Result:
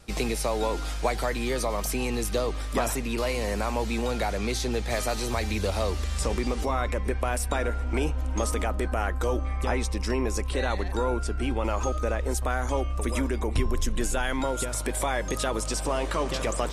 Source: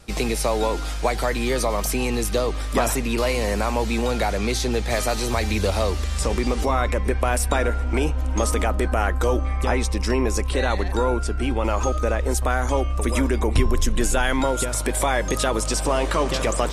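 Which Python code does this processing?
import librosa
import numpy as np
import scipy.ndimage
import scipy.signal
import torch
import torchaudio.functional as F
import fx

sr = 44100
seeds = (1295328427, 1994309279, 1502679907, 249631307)

y = fx.rider(x, sr, range_db=10, speed_s=0.5)
y = y * librosa.db_to_amplitude(-5.5)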